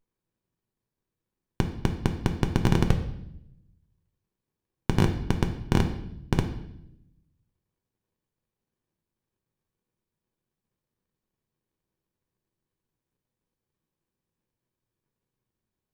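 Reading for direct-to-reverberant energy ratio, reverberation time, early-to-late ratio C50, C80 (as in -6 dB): 4.5 dB, 0.80 s, 9.5 dB, 12.5 dB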